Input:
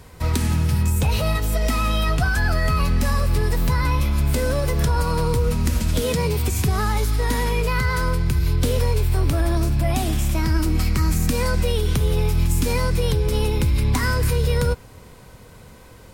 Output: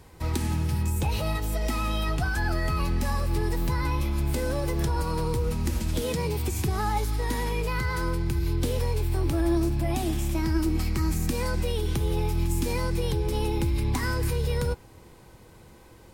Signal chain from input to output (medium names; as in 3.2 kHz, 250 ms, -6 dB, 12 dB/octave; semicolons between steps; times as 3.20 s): band-stop 1.4 kHz, Q 22; small resonant body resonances 340/830 Hz, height 11 dB, ringing for 85 ms; trim -7 dB